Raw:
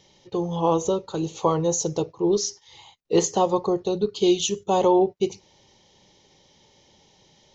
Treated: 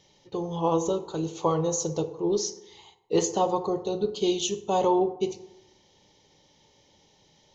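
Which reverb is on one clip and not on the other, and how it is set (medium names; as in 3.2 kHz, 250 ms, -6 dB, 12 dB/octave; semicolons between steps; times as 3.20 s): FDN reverb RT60 0.94 s, low-frequency decay 0.95×, high-frequency decay 0.5×, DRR 9 dB; trim -4 dB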